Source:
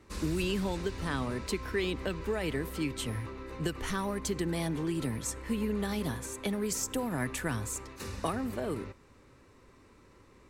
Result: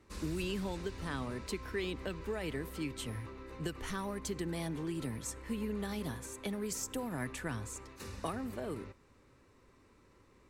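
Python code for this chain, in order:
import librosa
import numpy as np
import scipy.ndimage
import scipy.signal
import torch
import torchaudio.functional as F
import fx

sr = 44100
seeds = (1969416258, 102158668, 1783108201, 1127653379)

y = fx.high_shelf(x, sr, hz=12000.0, db=-11.5, at=(7.32, 7.82))
y = y * librosa.db_to_amplitude(-5.5)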